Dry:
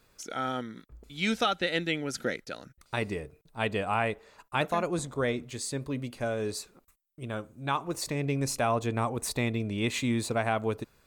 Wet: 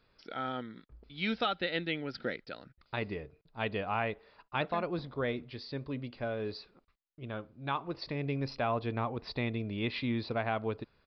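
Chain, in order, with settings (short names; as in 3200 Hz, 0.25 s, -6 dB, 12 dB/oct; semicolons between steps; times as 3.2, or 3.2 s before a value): downsampling 11025 Hz; gain -4.5 dB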